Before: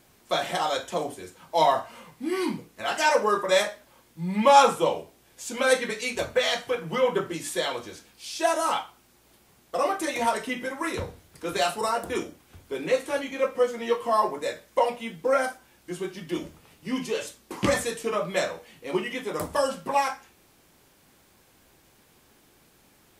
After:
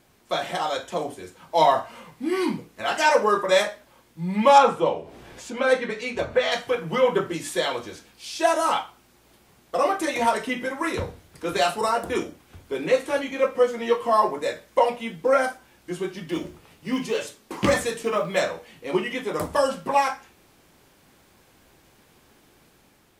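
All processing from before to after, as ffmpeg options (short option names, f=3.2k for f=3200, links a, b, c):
-filter_complex "[0:a]asettb=1/sr,asplit=3[a][b][c];[a]atrim=end=4.584[d];[b]atrim=start=4.58:end=6.52,asetpts=PTS-STARTPTS,afade=t=in:d=0.004:c=qsin,afade=t=out:st=1.936:d=0.004:c=qsin,lowpass=f=2.4k:p=1,acompressor=mode=upward:threshold=-32dB:ratio=2.5:attack=3.2:release=140:knee=2.83:detection=peak[e];[c]atrim=start=6.516[f];[d][e]acrossfade=d=0.004:c1=hsin:c2=qsin[g];[g][f]acrossfade=d=0.004:c1=qsin:c2=hsin,asettb=1/sr,asplit=3[h][i][j];[h]atrim=end=16.314[k];[i]atrim=start=16.31:end=18.41,asetpts=PTS-STARTPTS,afade=t=in:d=0.004:c=qsin,afade=t=out:st=2.096:d=0.004:c=qsin,bandreject=f=60:t=h:w=6,bandreject=f=120:t=h:w=6,bandreject=f=180:t=h:w=6,bandreject=f=240:t=h:w=6,bandreject=f=300:t=h:w=6,bandreject=f=360:t=h:w=6,bandreject=f=420:t=h:w=6,acrusher=bits=8:mode=log:mix=0:aa=0.000001[l];[j]atrim=start=18.406[m];[k][l]acrossfade=d=0.004:c1=hsin:c2=qsin[n];[n][m]acrossfade=d=0.004:c1=qsin:c2=hsin,dynaudnorm=f=810:g=3:m=3.5dB,highshelf=f=5.5k:g=-5"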